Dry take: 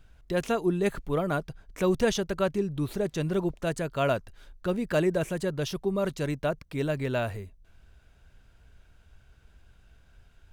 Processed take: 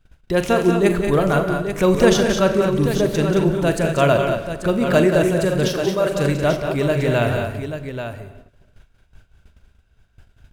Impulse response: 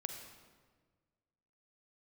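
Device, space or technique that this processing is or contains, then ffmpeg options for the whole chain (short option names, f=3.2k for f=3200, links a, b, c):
keyed gated reverb: -filter_complex "[0:a]asplit=3[a][b][c];[1:a]atrim=start_sample=2205[d];[b][d]afir=irnorm=-1:irlink=0[e];[c]apad=whole_len=464289[f];[e][f]sidechaingate=range=-33dB:threshold=-52dB:ratio=16:detection=peak,volume=2dB[g];[a][g]amix=inputs=2:normalize=0,asettb=1/sr,asplit=3[h][i][j];[h]atrim=end=5.684[k];[i]atrim=start=5.68:end=6.12,asetpts=PTS-STARTPTS,afade=t=in:d=0.004:c=qsin,afade=t=out:st=0.436:d=0.004:c=qsin,highpass=350[l];[j]atrim=start=6.116[m];[k][l]acrossfade=d=0.004:c1=hsin:c2=qsin[n];[n][m]acrossfade=d=0.004:c1=qsin:c2=hsin,agate=range=-11dB:threshold=-48dB:ratio=16:detection=peak,aecho=1:1:42|183|221|837:0.266|0.398|0.398|0.355,volume=3dB"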